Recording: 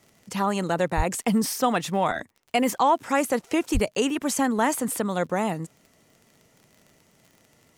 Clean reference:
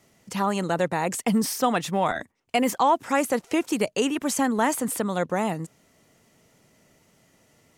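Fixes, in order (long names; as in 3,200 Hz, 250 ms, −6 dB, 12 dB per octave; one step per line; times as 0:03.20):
click removal
0:00.96–0:01.08: high-pass filter 140 Hz 24 dB per octave
0:03.73–0:03.85: high-pass filter 140 Hz 24 dB per octave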